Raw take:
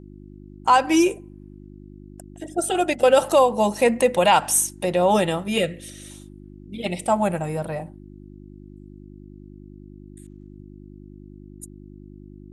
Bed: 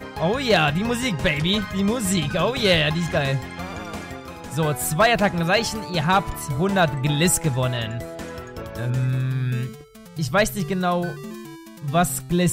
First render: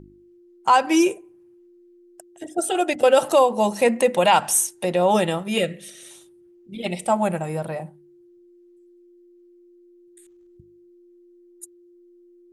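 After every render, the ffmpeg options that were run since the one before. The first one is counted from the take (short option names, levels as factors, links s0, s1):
-af "bandreject=f=50:t=h:w=4,bandreject=f=100:t=h:w=4,bandreject=f=150:t=h:w=4,bandreject=f=200:t=h:w=4,bandreject=f=250:t=h:w=4,bandreject=f=300:t=h:w=4"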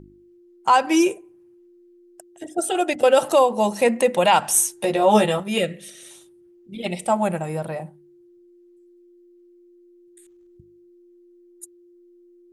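-filter_complex "[0:a]asettb=1/sr,asplit=3[s0][s1][s2];[s0]atrim=end=4.534[s3];[s1]atrim=start=4.53:end=5.4,asetpts=PTS-STARTPTS,afade=t=in:d=0.004:c=qsin,afade=t=out:st=0.866:d=0.004:c=qsin,asplit=2[s4][s5];[s5]adelay=14,volume=0.794[s6];[s4][s6]amix=inputs=2:normalize=0,atrim=end_sample=38367[s7];[s2]atrim=start=5.396[s8];[s3][s7]acrossfade=d=0.004:c1=hsin:c2=qsin[s9];[s9][s8]acrossfade=d=0.004:c1=qsin:c2=hsin"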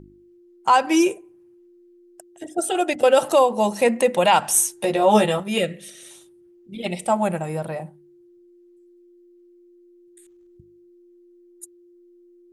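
-af anull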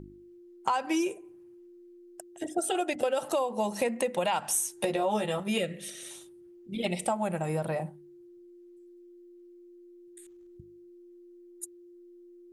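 -af "acompressor=threshold=0.0501:ratio=6"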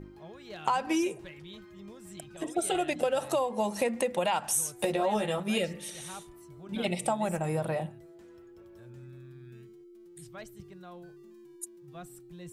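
-filter_complex "[1:a]volume=0.0447[s0];[0:a][s0]amix=inputs=2:normalize=0"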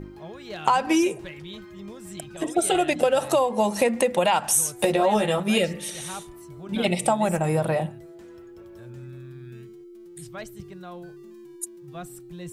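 -af "volume=2.37"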